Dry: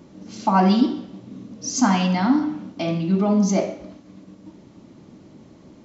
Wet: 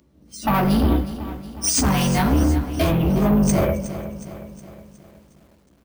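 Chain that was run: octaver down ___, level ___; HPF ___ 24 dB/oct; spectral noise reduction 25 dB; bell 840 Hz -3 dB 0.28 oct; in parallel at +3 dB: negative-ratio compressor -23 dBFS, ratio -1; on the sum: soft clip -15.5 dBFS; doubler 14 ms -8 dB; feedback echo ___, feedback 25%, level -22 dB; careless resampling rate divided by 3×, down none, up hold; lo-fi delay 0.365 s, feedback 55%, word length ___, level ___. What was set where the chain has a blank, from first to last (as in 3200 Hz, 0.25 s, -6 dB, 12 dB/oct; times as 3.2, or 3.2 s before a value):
2 oct, +3 dB, 65 Hz, 0.269 s, 8-bit, -13 dB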